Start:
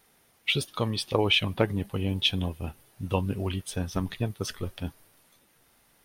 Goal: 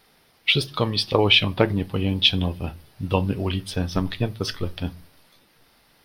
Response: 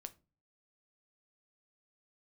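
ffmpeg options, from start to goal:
-filter_complex "[0:a]asplit=2[s0][s1];[s1]highshelf=f=7100:t=q:w=3:g=-13[s2];[1:a]atrim=start_sample=2205[s3];[s2][s3]afir=irnorm=-1:irlink=0,volume=2.37[s4];[s0][s4]amix=inputs=2:normalize=0,volume=0.841"

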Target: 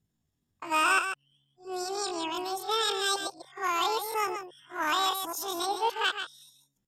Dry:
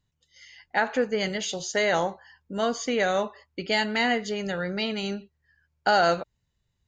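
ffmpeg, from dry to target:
-filter_complex "[0:a]areverse,asplit=2[s0][s1];[s1]volume=5.96,asoftclip=hard,volume=0.168,volume=0.447[s2];[s0][s2]amix=inputs=2:normalize=0,aecho=1:1:144:0.398,asetrate=80880,aresample=44100,atempo=0.545254,volume=0.447"

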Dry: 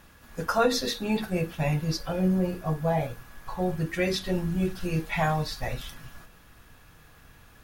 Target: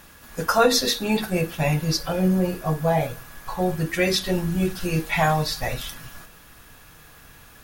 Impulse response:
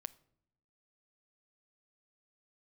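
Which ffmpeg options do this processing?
-filter_complex "[0:a]asplit=2[s0][s1];[1:a]atrim=start_sample=2205,lowshelf=f=140:g=-11.5,highshelf=f=4200:g=9.5[s2];[s1][s2]afir=irnorm=-1:irlink=0,volume=1.5[s3];[s0][s3]amix=inputs=2:normalize=0"

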